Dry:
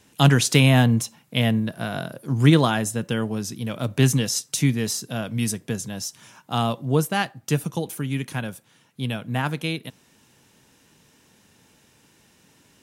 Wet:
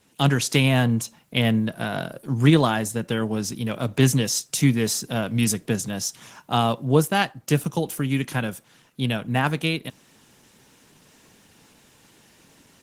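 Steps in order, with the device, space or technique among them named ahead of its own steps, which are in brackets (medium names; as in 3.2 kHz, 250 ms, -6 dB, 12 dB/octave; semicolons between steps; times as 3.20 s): video call (high-pass 100 Hz 6 dB/octave; level rider gain up to 7.5 dB; trim -2.5 dB; Opus 16 kbps 48 kHz)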